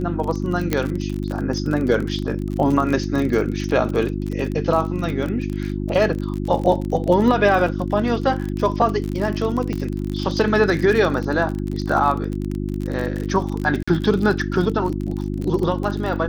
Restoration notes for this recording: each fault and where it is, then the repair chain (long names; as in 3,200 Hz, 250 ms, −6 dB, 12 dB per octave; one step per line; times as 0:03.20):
surface crackle 37 per second −24 dBFS
mains hum 50 Hz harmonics 7 −25 dBFS
0:00.73: click −5 dBFS
0:09.73: click −14 dBFS
0:13.83–0:13.88: drop-out 45 ms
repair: click removal
hum removal 50 Hz, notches 7
repair the gap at 0:13.83, 45 ms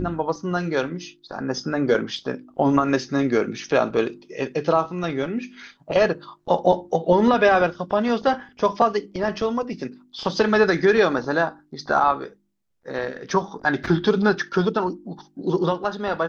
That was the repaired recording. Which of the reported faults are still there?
0:09.73: click